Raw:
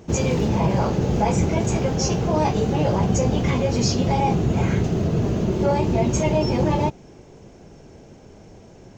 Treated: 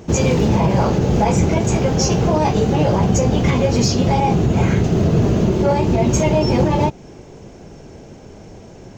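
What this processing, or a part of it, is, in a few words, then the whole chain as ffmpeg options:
limiter into clipper: -af "alimiter=limit=-12.5dB:level=0:latency=1:release=200,asoftclip=type=hard:threshold=-14dB,volume=6.5dB"

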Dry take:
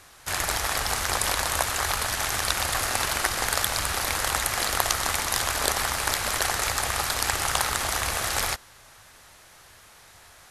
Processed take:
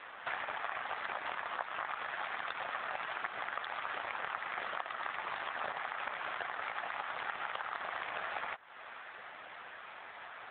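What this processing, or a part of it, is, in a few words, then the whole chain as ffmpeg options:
voicemail: -af "highpass=420,lowpass=2700,acompressor=threshold=-43dB:ratio=8,volume=9.5dB" -ar 8000 -c:a libopencore_amrnb -b:a 7400

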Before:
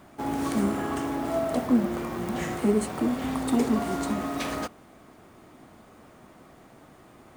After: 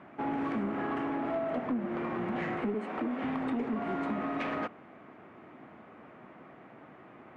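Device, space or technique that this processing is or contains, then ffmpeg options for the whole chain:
AM radio: -filter_complex "[0:a]asettb=1/sr,asplit=3[link_01][link_02][link_03];[link_01]atrim=end=2.744[link_04];[link_02]atrim=start=2.74:end=3.23,asetpts=PTS-STARTPTS,afade=type=in:duration=0.004:curve=qsin,afade=type=out:start_time=0.486:duration=0.004:curve=qsin,highpass=frequency=200:width=0.5412,highpass=frequency=200:width=1.3066[link_05];[link_03]atrim=start=3.226[link_06];[link_04][link_05]acrossfade=duration=0.004:curve1=hsin:curve2=qsin[link_07];[link_07][link_06]acrossfade=duration=0.004:curve1=qsin:curve2=hsin,highpass=140,lowpass=3500,highshelf=frequency=3300:width_type=q:width=1.5:gain=-10.5,acompressor=threshold=-28dB:ratio=5,asoftclip=type=tanh:threshold=-24dB"

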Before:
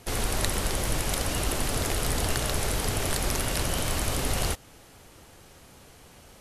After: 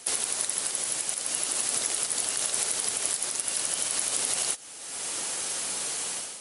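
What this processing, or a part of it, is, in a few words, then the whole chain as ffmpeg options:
low-bitrate web radio: -af "highpass=140,aemphasis=mode=production:type=riaa,dynaudnorm=framelen=100:gausssize=7:maxgain=14.5dB,alimiter=limit=-12dB:level=0:latency=1:release=160" -ar 32000 -c:a libmp3lame -b:a 48k

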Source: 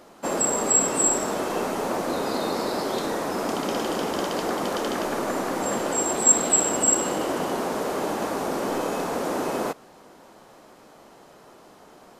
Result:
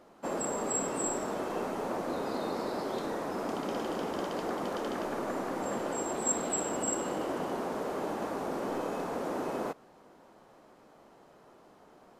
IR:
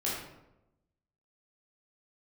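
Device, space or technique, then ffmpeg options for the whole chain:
behind a face mask: -af "highshelf=frequency=2800:gain=-8,volume=-7dB"

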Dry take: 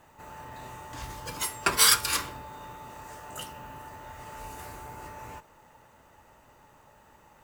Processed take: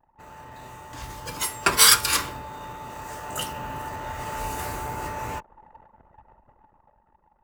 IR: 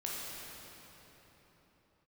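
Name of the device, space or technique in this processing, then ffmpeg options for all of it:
voice memo with heavy noise removal: -af "anlmdn=0.00158,dynaudnorm=framelen=200:gausssize=13:maxgain=11dB"

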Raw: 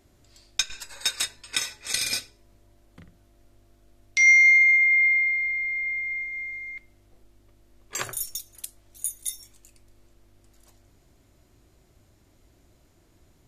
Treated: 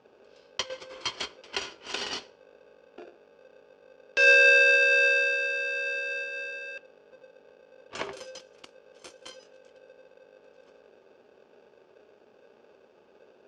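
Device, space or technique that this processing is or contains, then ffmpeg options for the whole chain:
ring modulator pedal into a guitar cabinet: -af "aeval=exprs='val(0)*sgn(sin(2*PI*520*n/s))':channel_layout=same,highpass=88,equalizer=frequency=100:width_type=q:width=4:gain=-7,equalizer=frequency=160:width_type=q:width=4:gain=-10,equalizer=frequency=240:width_type=q:width=4:gain=3,equalizer=frequency=380:width_type=q:width=4:gain=10,equalizer=frequency=1900:width_type=q:width=4:gain=-8,equalizer=frequency=3900:width_type=q:width=4:gain=-8,lowpass=frequency=4400:width=0.5412,lowpass=frequency=4400:width=1.3066"

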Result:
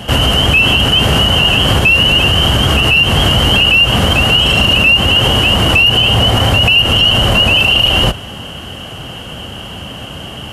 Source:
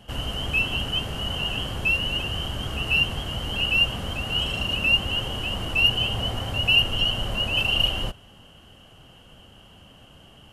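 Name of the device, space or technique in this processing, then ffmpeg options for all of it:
mastering chain: -af "highpass=52,equalizer=frequency=2100:width_type=o:width=0.77:gain=1.5,acompressor=threshold=-24dB:ratio=3,alimiter=level_in=24dB:limit=-1dB:release=50:level=0:latency=1,volume=-1dB"

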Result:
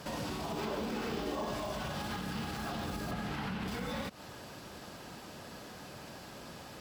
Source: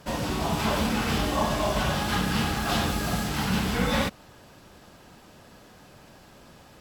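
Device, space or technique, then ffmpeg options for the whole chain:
broadcast voice chain: -filter_complex "[0:a]asettb=1/sr,asplit=3[link_01][link_02][link_03];[link_01]atrim=end=3.114[link_04];[link_02]atrim=start=3.11:end=3.68,asetpts=PTS-STARTPTS,afade=type=in:duration=0.004:curve=qsin,afade=type=out:start_time=0.566:duration=0.004:curve=qsin,acrossover=split=3300[link_05][link_06];[link_06]acompressor=threshold=-50dB:ratio=4:attack=1:release=60[link_07];[link_05][link_07]amix=inputs=2:normalize=0[link_08];[link_03]atrim=start=3.676[link_09];[link_04][link_08]acrossfade=duration=0.004:curve1=hsin:curve2=qsin[link_10];[link_10][link_09]acrossfade=duration=0.004:curve1=qsin:curve2=hsin,highpass=frequency=91:poles=1,deesser=0.8,acompressor=threshold=-32dB:ratio=6,equalizer=frequency=4700:width_type=o:width=0.42:gain=2.5,alimiter=level_in=8.5dB:limit=-24dB:level=0:latency=1:release=117,volume=-8.5dB,asettb=1/sr,asplit=3[link_11][link_12][link_13];[link_11]atrim=end=0.514[link_14];[link_12]atrim=start=0.51:end=1.53,asetpts=PTS-STARTPTS,afade=type=in:duration=0.004:curve=qsin,afade=type=out:start_time=1.016:duration=0.004:curve=qsin,equalizer=frequency=100:width_type=o:width=0.67:gain=-9,equalizer=frequency=400:width_type=o:width=0.67:gain=9,equalizer=frequency=10000:width_type=o:width=0.67:gain=-4[link_15];[link_13]atrim=start=1.526[link_16];[link_14][link_15]acrossfade=duration=0.004:curve1=hsin:curve2=qsin[link_17];[link_17][link_16]acrossfade=duration=0.004:curve1=qsin:curve2=hsin,volume=3.5dB"

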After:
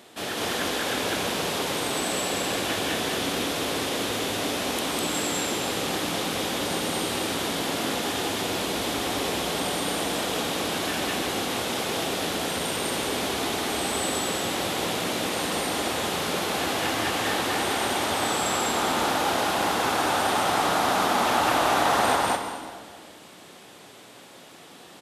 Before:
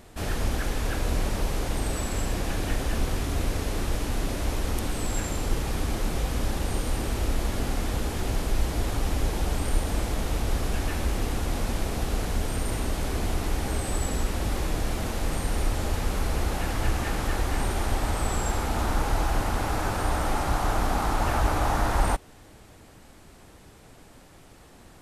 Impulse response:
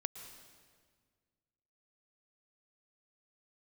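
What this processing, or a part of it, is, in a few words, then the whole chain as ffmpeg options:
stadium PA: -filter_complex "[0:a]highpass=65,highpass=250,equalizer=frequency=3400:width_type=o:width=0.66:gain=7,aecho=1:1:201.2|247.8:1|0.355[link_01];[1:a]atrim=start_sample=2205[link_02];[link_01][link_02]afir=irnorm=-1:irlink=0,volume=3.5dB"

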